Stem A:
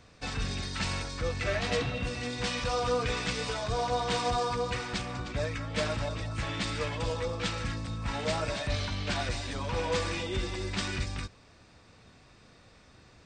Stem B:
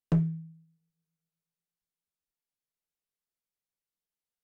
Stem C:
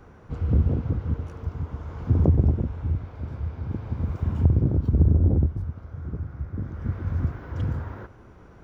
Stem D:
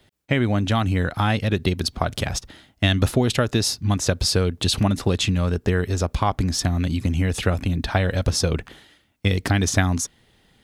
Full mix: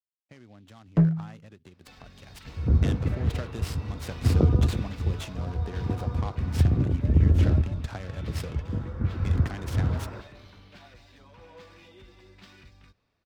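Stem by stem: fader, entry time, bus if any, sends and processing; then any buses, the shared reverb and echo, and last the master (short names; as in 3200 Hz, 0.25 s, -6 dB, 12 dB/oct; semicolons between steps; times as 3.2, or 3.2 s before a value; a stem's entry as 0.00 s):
-6.5 dB, 1.65 s, no send, median filter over 5 samples; compressor 2:1, threshold -39 dBFS, peak gain reduction 8.5 dB
+3.0 dB, 0.85 s, no send, dry
-9.0 dB, 2.15 s, no send, AGC gain up to 10.5 dB
2.19 s -18 dB -> 2.46 s -9.5 dB, 0.00 s, no send, steep low-pass 8700 Hz 48 dB/oct; compressor 6:1, threshold -23 dBFS, peak gain reduction 10 dB; noise-modulated delay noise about 3200 Hz, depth 0.041 ms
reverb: off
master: gate with hold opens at -60 dBFS; high shelf 6100 Hz -10.5 dB; three-band expander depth 40%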